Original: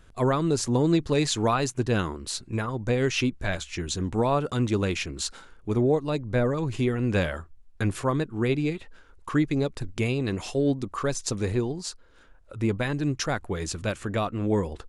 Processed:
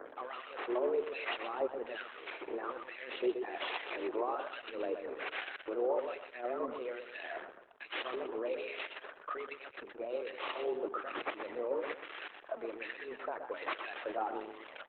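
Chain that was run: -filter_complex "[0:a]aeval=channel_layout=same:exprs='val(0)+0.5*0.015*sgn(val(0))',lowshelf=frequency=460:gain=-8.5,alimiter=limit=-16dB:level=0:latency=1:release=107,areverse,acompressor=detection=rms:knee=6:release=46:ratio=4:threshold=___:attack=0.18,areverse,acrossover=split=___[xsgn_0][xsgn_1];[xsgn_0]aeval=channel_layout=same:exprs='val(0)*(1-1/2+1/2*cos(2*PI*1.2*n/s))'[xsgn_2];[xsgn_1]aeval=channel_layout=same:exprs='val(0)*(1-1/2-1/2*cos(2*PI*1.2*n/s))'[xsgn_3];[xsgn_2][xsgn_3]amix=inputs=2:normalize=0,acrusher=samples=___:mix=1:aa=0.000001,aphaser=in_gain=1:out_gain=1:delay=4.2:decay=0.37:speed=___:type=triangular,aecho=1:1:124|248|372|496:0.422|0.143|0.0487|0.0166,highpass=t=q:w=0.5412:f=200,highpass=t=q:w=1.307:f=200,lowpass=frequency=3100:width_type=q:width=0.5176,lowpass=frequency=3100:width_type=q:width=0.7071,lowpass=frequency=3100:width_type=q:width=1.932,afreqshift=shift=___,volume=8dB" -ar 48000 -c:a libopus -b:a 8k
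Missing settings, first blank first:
-37dB, 1300, 7, 0.62, 120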